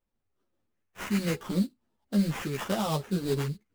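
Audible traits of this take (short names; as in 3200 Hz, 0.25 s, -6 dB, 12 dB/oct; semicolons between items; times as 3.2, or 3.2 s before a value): phasing stages 4, 0.73 Hz, lowest notch 780–3000 Hz; aliases and images of a low sample rate 4400 Hz, jitter 20%; a shimmering, thickened sound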